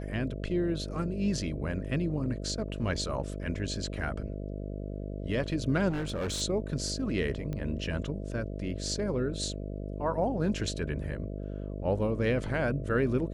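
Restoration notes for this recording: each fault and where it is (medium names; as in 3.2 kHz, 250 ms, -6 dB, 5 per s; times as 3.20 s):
buzz 50 Hz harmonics 13 -37 dBFS
5.89–6.42 s: clipped -29 dBFS
7.53 s: pop -24 dBFS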